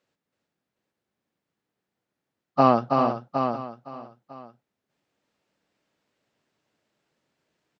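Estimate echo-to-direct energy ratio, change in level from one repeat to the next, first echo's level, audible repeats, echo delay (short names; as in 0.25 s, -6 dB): -2.0 dB, no steady repeat, -4.5 dB, 7, 0.325 s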